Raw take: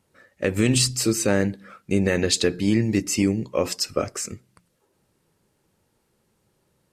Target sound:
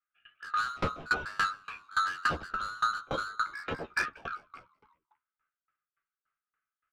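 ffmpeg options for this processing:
ffmpeg -i in.wav -filter_complex "[0:a]afftfilt=real='real(if(lt(b,272),68*(eq(floor(b/68),0)*3+eq(floor(b/68),1)*0+eq(floor(b/68),2)*1+eq(floor(b/68),3)*2)+mod(b,68),b),0)':imag='imag(if(lt(b,272),68*(eq(floor(b/68),0)*3+eq(floor(b/68),1)*0+eq(floor(b/68),2)*1+eq(floor(b/68),3)*2)+mod(b,68),b),0)':win_size=2048:overlap=0.75,agate=range=-33dB:threshold=-56dB:ratio=3:detection=peak,acrossover=split=270[link_01][link_02];[link_02]volume=17.5dB,asoftclip=hard,volume=-17.5dB[link_03];[link_01][link_03]amix=inputs=2:normalize=0,highpass=frequency=160:width_type=q:width=0.5412,highpass=frequency=160:width_type=q:width=1.307,lowpass=frequency=3200:width_type=q:width=0.5176,lowpass=frequency=3200:width_type=q:width=0.7071,lowpass=frequency=3200:width_type=q:width=1.932,afreqshift=-330,asoftclip=type=tanh:threshold=-25.5dB,asplit=2[link_04][link_05];[link_05]adelay=13,volume=-4.5dB[link_06];[link_04][link_06]amix=inputs=2:normalize=0,asplit=2[link_07][link_08];[link_08]asplit=4[link_09][link_10][link_11][link_12];[link_09]adelay=193,afreqshift=-94,volume=-15dB[link_13];[link_10]adelay=386,afreqshift=-188,volume=-21.9dB[link_14];[link_11]adelay=579,afreqshift=-282,volume=-28.9dB[link_15];[link_12]adelay=772,afreqshift=-376,volume=-35.8dB[link_16];[link_13][link_14][link_15][link_16]amix=inputs=4:normalize=0[link_17];[link_07][link_17]amix=inputs=2:normalize=0,aeval=exprs='val(0)*pow(10,-26*if(lt(mod(3.5*n/s,1),2*abs(3.5)/1000),1-mod(3.5*n/s,1)/(2*abs(3.5)/1000),(mod(3.5*n/s,1)-2*abs(3.5)/1000)/(1-2*abs(3.5)/1000))/20)':channel_layout=same,volume=4dB" out.wav

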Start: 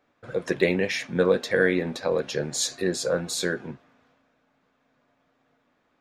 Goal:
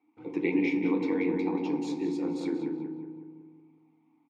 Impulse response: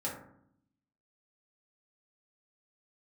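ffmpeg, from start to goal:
-filter_complex "[0:a]asplit=3[link_01][link_02][link_03];[link_01]bandpass=frequency=300:width_type=q:width=8,volume=0dB[link_04];[link_02]bandpass=frequency=870:width_type=q:width=8,volume=-6dB[link_05];[link_03]bandpass=frequency=2240:width_type=q:width=8,volume=-9dB[link_06];[link_04][link_05][link_06]amix=inputs=3:normalize=0,atempo=1.4,asplit=2[link_07][link_08];[link_08]adelay=184,lowpass=frequency=2100:poles=1,volume=-4dB,asplit=2[link_09][link_10];[link_10]adelay=184,lowpass=frequency=2100:poles=1,volume=0.53,asplit=2[link_11][link_12];[link_12]adelay=184,lowpass=frequency=2100:poles=1,volume=0.53,asplit=2[link_13][link_14];[link_14]adelay=184,lowpass=frequency=2100:poles=1,volume=0.53,asplit=2[link_15][link_16];[link_16]adelay=184,lowpass=frequency=2100:poles=1,volume=0.53,asplit=2[link_17][link_18];[link_18]adelay=184,lowpass=frequency=2100:poles=1,volume=0.53,asplit=2[link_19][link_20];[link_20]adelay=184,lowpass=frequency=2100:poles=1,volume=0.53[link_21];[link_07][link_09][link_11][link_13][link_15][link_17][link_19][link_21]amix=inputs=8:normalize=0,asplit=2[link_22][link_23];[1:a]atrim=start_sample=2205,asetrate=25137,aresample=44100[link_24];[link_23][link_24]afir=irnorm=-1:irlink=0,volume=-7dB[link_25];[link_22][link_25]amix=inputs=2:normalize=0,volume=3.5dB"

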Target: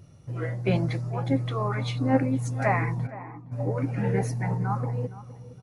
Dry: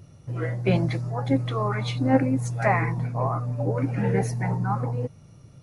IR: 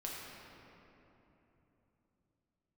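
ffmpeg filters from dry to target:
-filter_complex "[0:a]asplit=3[link_01][link_02][link_03];[link_01]afade=type=out:start_time=3.06:duration=0.02[link_04];[link_02]asplit=3[link_05][link_06][link_07];[link_05]bandpass=frequency=300:width_type=q:width=8,volume=0dB[link_08];[link_06]bandpass=frequency=870:width_type=q:width=8,volume=-6dB[link_09];[link_07]bandpass=frequency=2240:width_type=q:width=8,volume=-9dB[link_10];[link_08][link_09][link_10]amix=inputs=3:normalize=0,afade=type=in:start_time=3.06:duration=0.02,afade=type=out:start_time=3.51:duration=0.02[link_11];[link_03]afade=type=in:start_time=3.51:duration=0.02[link_12];[link_04][link_11][link_12]amix=inputs=3:normalize=0,asplit=2[link_13][link_14];[link_14]adelay=466,lowpass=frequency=1600:poles=1,volume=-15.5dB,asplit=2[link_15][link_16];[link_16]adelay=466,lowpass=frequency=1600:poles=1,volume=0.28,asplit=2[link_17][link_18];[link_18]adelay=466,lowpass=frequency=1600:poles=1,volume=0.28[link_19];[link_13][link_15][link_17][link_19]amix=inputs=4:normalize=0,volume=-2.5dB"

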